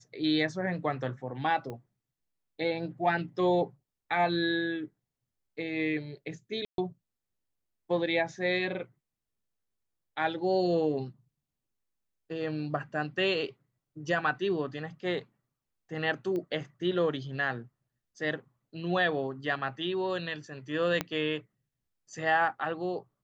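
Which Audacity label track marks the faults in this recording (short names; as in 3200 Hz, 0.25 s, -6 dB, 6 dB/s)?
1.700000	1.700000	pop -27 dBFS
6.650000	6.780000	gap 0.132 s
16.360000	16.360000	pop -25 dBFS
21.010000	21.010000	pop -14 dBFS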